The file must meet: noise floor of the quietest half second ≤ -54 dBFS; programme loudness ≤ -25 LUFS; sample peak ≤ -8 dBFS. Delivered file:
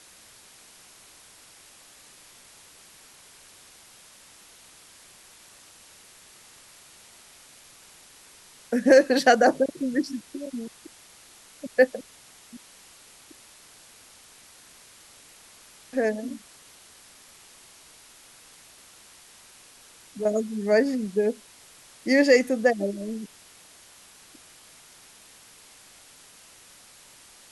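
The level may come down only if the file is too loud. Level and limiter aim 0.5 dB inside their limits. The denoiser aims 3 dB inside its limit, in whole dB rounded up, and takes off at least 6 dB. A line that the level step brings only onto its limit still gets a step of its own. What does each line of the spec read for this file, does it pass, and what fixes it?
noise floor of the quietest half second -52 dBFS: fail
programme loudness -23.5 LUFS: fail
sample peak -5.0 dBFS: fail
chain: noise reduction 6 dB, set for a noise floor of -52 dBFS; trim -2 dB; peak limiter -8.5 dBFS

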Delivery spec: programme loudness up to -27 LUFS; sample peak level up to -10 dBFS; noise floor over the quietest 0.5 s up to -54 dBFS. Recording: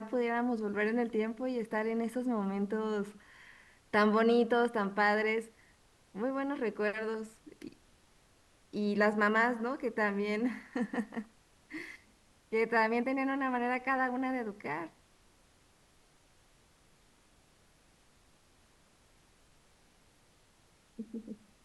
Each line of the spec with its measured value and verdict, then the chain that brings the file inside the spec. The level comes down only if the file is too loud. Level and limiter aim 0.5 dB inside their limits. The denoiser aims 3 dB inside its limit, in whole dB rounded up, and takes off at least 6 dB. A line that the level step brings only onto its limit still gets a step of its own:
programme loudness -32.5 LUFS: pass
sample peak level -16.0 dBFS: pass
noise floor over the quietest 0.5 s -66 dBFS: pass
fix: none needed

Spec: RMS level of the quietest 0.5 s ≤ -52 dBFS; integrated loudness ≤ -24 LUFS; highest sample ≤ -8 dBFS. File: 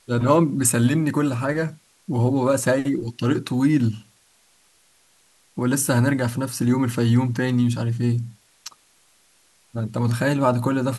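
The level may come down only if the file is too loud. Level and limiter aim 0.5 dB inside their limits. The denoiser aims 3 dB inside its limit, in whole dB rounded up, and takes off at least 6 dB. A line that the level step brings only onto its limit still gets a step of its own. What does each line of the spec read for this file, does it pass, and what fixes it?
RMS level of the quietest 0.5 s -59 dBFS: pass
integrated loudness -21.5 LUFS: fail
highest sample -4.0 dBFS: fail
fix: trim -3 dB; peak limiter -8.5 dBFS

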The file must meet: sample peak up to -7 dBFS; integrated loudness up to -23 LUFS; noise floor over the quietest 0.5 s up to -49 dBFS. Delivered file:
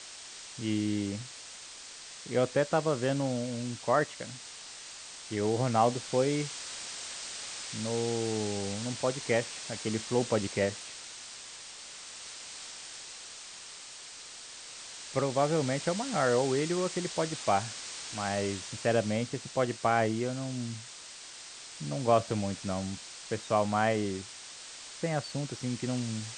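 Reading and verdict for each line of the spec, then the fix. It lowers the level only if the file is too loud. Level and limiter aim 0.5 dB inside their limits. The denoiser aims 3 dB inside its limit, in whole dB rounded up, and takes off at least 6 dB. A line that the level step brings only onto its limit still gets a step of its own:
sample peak -12.0 dBFS: pass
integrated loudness -31.5 LUFS: pass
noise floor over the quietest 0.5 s -47 dBFS: fail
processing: noise reduction 6 dB, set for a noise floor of -47 dBFS

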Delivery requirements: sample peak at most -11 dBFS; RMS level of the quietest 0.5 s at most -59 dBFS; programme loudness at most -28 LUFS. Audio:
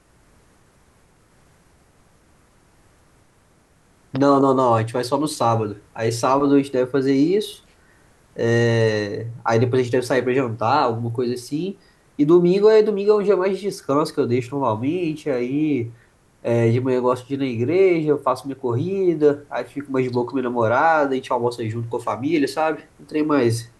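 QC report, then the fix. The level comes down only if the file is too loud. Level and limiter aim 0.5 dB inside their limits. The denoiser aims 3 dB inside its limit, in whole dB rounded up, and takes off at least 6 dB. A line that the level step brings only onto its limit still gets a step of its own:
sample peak -3.5 dBFS: fail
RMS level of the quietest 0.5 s -57 dBFS: fail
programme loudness -20.0 LUFS: fail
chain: trim -8.5 dB

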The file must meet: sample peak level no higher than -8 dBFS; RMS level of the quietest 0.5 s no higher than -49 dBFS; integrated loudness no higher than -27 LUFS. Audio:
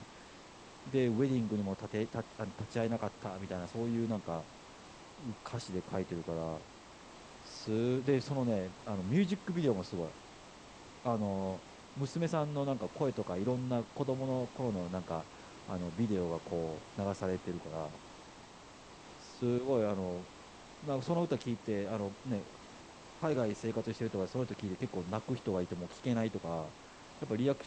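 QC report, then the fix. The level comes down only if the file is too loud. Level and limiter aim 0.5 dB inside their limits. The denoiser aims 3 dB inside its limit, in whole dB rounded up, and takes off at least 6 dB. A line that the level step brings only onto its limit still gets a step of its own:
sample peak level -18.5 dBFS: pass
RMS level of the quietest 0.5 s -54 dBFS: pass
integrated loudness -37.0 LUFS: pass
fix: none needed

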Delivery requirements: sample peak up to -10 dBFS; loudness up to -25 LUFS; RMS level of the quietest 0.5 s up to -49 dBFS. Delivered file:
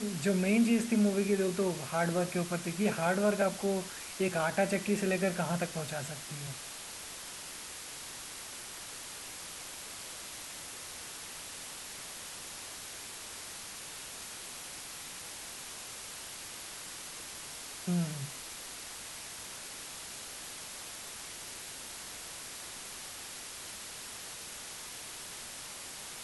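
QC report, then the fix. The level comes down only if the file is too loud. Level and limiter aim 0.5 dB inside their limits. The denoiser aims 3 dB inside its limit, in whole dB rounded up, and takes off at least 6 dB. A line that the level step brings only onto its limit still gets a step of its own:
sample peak -17.0 dBFS: pass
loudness -36.0 LUFS: pass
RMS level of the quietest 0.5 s -45 dBFS: fail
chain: noise reduction 7 dB, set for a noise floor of -45 dBFS

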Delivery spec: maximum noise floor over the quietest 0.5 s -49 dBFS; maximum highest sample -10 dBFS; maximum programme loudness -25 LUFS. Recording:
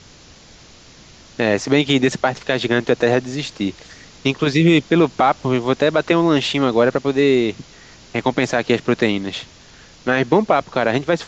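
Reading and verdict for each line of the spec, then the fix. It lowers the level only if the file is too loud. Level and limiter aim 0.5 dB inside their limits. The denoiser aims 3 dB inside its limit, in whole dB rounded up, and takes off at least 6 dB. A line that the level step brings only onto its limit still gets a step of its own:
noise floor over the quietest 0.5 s -45 dBFS: fail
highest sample -4.0 dBFS: fail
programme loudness -18.0 LUFS: fail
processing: trim -7.5 dB

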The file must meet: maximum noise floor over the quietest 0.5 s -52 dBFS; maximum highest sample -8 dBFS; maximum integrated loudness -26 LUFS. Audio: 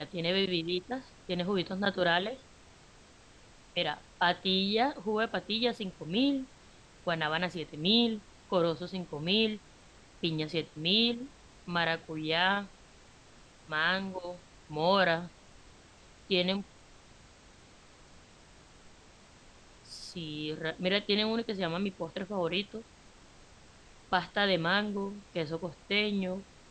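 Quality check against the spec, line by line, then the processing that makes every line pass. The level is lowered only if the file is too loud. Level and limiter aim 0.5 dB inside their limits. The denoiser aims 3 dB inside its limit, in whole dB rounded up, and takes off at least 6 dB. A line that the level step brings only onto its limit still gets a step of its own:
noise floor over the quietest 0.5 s -57 dBFS: pass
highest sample -12.5 dBFS: pass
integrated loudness -31.0 LUFS: pass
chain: none needed

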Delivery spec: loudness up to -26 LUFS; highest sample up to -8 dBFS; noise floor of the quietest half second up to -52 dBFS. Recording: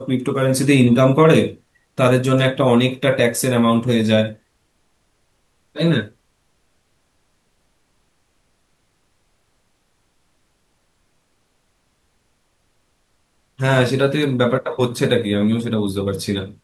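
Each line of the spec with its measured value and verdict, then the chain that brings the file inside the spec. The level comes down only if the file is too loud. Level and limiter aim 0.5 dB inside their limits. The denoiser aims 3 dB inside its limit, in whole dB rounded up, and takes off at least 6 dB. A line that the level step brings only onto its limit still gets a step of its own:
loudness -17.5 LUFS: fail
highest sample -2.0 dBFS: fail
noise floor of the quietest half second -64 dBFS: pass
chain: trim -9 dB

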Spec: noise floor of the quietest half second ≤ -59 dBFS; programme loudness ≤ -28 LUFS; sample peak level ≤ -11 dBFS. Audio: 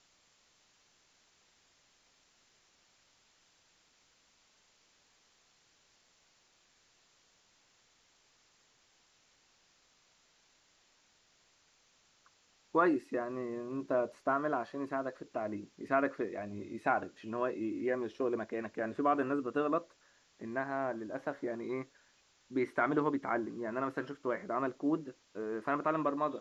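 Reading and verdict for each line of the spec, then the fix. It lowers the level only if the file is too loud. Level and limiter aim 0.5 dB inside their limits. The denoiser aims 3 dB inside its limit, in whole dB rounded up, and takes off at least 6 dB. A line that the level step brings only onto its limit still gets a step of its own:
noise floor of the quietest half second -70 dBFS: pass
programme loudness -35.5 LUFS: pass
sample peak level -17.0 dBFS: pass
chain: none needed

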